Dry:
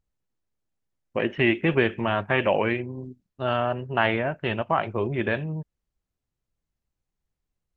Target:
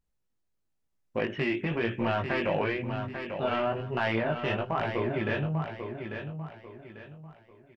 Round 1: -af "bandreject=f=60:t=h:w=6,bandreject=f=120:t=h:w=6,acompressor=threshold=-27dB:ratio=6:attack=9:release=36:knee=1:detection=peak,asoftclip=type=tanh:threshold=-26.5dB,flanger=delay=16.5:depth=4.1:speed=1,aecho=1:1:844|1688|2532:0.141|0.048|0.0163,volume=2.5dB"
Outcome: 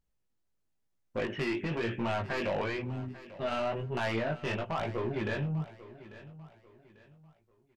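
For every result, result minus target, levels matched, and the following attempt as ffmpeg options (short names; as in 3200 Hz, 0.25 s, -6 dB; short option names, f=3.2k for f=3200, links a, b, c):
soft clip: distortion +11 dB; echo-to-direct -9.5 dB
-af "bandreject=f=60:t=h:w=6,bandreject=f=120:t=h:w=6,acompressor=threshold=-27dB:ratio=6:attack=9:release=36:knee=1:detection=peak,asoftclip=type=tanh:threshold=-15.5dB,flanger=delay=16.5:depth=4.1:speed=1,aecho=1:1:844|1688|2532:0.141|0.048|0.0163,volume=2.5dB"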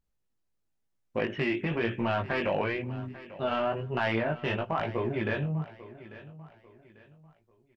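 echo-to-direct -9.5 dB
-af "bandreject=f=60:t=h:w=6,bandreject=f=120:t=h:w=6,acompressor=threshold=-27dB:ratio=6:attack=9:release=36:knee=1:detection=peak,asoftclip=type=tanh:threshold=-15.5dB,flanger=delay=16.5:depth=4.1:speed=1,aecho=1:1:844|1688|2532|3376:0.422|0.143|0.0487|0.0166,volume=2.5dB"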